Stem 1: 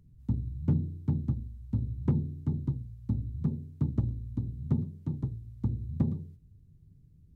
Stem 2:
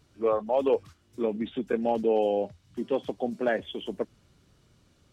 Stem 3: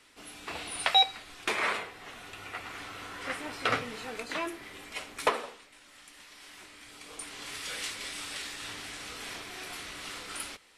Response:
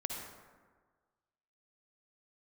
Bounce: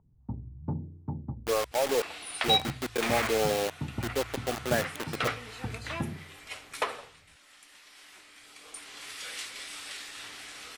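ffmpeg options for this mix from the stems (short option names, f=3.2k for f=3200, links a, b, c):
-filter_complex "[0:a]lowpass=f=890:t=q:w=3.4,volume=0dB,asplit=3[a][b][c];[a]atrim=end=1.72,asetpts=PTS-STARTPTS,afade=t=out:st=1.716:d=0.004:c=hsin[d];[b]atrim=start=1.72:end=2.48,asetpts=PTS-STARTPTS,volume=0[e];[c]atrim=start=2.48,asetpts=PTS-STARTPTS,afade=t=in:d=0.004:c=hsin[f];[d][e][f]concat=n=3:v=0:a=1[g];[1:a]aeval=exprs='0.2*(cos(1*acos(clip(val(0)/0.2,-1,1)))-cos(1*PI/2))+0.0447*(cos(2*acos(clip(val(0)/0.2,-1,1)))-cos(2*PI/2))+0.0224*(cos(4*acos(clip(val(0)/0.2,-1,1)))-cos(4*PI/2))':c=same,acrusher=bits=4:mix=0:aa=0.000001,adelay=1250,volume=-0.5dB[h];[2:a]adelay=1550,volume=-2dB[i];[g][h][i]amix=inputs=3:normalize=0,lowshelf=f=380:g=-8.5,bandreject=f=980:w=25"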